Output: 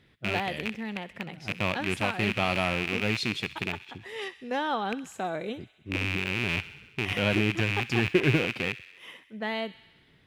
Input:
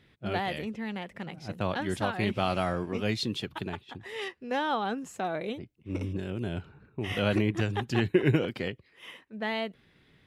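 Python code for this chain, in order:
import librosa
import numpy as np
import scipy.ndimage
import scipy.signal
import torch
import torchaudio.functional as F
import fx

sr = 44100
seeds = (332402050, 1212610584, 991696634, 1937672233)

y = fx.rattle_buzz(x, sr, strikes_db=-36.0, level_db=-17.0)
y = fx.echo_wet_highpass(y, sr, ms=65, feedback_pct=70, hz=1600.0, wet_db=-15)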